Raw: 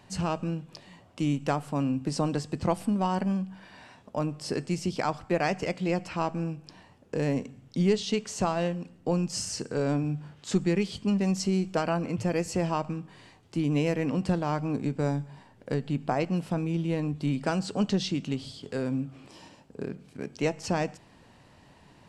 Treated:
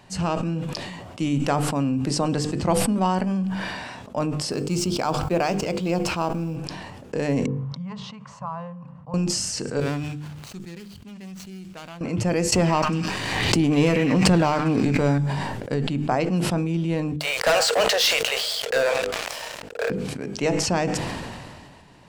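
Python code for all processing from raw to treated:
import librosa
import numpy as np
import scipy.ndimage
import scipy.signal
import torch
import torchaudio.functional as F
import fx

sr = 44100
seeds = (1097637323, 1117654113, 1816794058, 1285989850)

y = fx.chain(x, sr, fx.law_mismatch(coded='A'),
    fx.peak_eq(hz=1900.0, db=-9.0, octaves=0.39), at=(4.51, 6.56))
y = fx.chain(y, sr, fx.double_bandpass(hz=380.0, octaves=2.9),
    fx.peak_eq(hz=540.0, db=12.5, octaves=0.32), at=(7.46, 9.14))
y = fx.chain(y, sr, fx.median_filter(points=25),
    fx.tone_stack(knobs='5-5-5'), at=(9.8, 12.01))
y = fx.chain(y, sr, fx.echo_stepped(ms=101, hz=1800.0, octaves=0.7, feedback_pct=70, wet_db=-4.0),
    fx.leveller(passes=1),
    fx.pre_swell(db_per_s=32.0), at=(12.52, 15.18))
y = fx.chain(y, sr, fx.cheby_ripple_highpass(hz=450.0, ripple_db=6),
    fx.leveller(passes=5), at=(17.16, 19.9))
y = fx.hum_notches(y, sr, base_hz=50, count=10)
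y = fx.sustainer(y, sr, db_per_s=28.0)
y = y * librosa.db_to_amplitude(4.5)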